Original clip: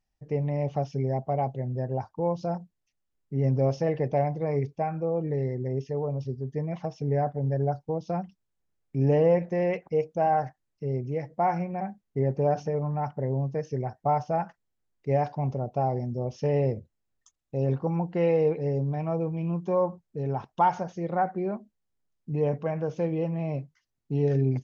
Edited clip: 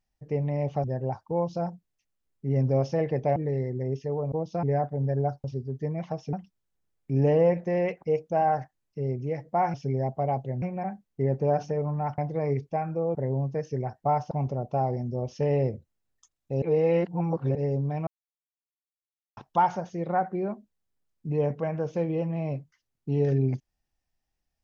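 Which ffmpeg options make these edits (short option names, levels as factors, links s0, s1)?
-filter_complex "[0:a]asplit=16[s0][s1][s2][s3][s4][s5][s6][s7][s8][s9][s10][s11][s12][s13][s14][s15];[s0]atrim=end=0.842[s16];[s1]atrim=start=1.718:end=4.242[s17];[s2]atrim=start=5.208:end=6.172[s18];[s3]atrim=start=7.868:end=8.182[s19];[s4]atrim=start=7.058:end=7.872[s20];[s5]atrim=start=6.168:end=7.062[s21];[s6]atrim=start=8.178:end=11.592[s22];[s7]atrim=start=0.838:end=1.722[s23];[s8]atrim=start=11.588:end=13.152[s24];[s9]atrim=start=4.238:end=5.212[s25];[s10]atrim=start=13.148:end=14.312[s26];[s11]atrim=start=15.338:end=17.652[s27];[s12]atrim=start=17.648:end=18.582,asetpts=PTS-STARTPTS,areverse[s28];[s13]atrim=start=18.578:end=19.1,asetpts=PTS-STARTPTS,afade=t=out:st=0.518:d=0.004:c=hsin[s29];[s14]atrim=start=19.1:end=20.4,asetpts=PTS-STARTPTS,volume=0[s30];[s15]atrim=start=20.4,asetpts=PTS-STARTPTS,afade=t=in:d=0.004:c=hsin[s31];[s16][s17]acrossfade=d=0.004:c1=hsin:c2=hsin[s32];[s32][s18]acrossfade=d=0.004:c1=hsin:c2=hsin[s33];[s33][s19]acrossfade=d=0.004:c1=hsin:c2=hsin[s34];[s34][s20]acrossfade=d=0.004:c1=hsin:c2=hsin[s35];[s35][s21]acrossfade=d=0.004:c1=hsin:c2=hsin[s36];[s36][s22]acrossfade=d=0.004:c1=hsin:c2=hsin[s37];[s37][s23]acrossfade=d=0.004:c1=hsin:c2=hsin[s38];[s38][s24]acrossfade=d=0.004:c1=hsin:c2=hsin[s39];[s39][s25]acrossfade=d=0.004:c1=hsin:c2=hsin[s40];[s40][s26]acrossfade=d=0.004:c1=hsin:c2=hsin[s41];[s41][s27]acrossfade=d=0.004:c1=hsin:c2=hsin[s42];[s42][s28]acrossfade=d=0.004:c1=hsin:c2=hsin[s43];[s29][s30][s31]concat=n=3:v=0:a=1[s44];[s43][s44]acrossfade=d=0.004:c1=hsin:c2=hsin"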